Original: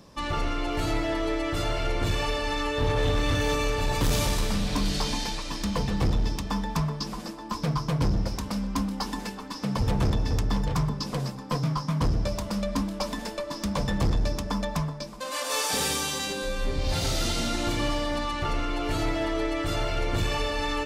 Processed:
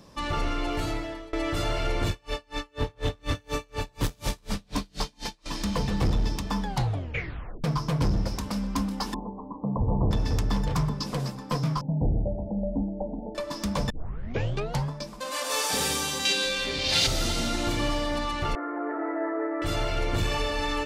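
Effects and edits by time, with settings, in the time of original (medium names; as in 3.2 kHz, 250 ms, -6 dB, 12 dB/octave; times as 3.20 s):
0.71–1.33 s: fade out, to -24 dB
2.09–5.46 s: logarithmic tremolo 4.1 Hz, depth 37 dB
6.61 s: tape stop 1.03 s
9.14–10.11 s: steep low-pass 1.1 kHz 96 dB/octave
11.81–13.35 s: steep low-pass 850 Hz 96 dB/octave
13.90 s: tape start 1.01 s
16.25–17.07 s: frequency weighting D
18.55–19.62 s: Chebyshev band-pass 280–1900 Hz, order 5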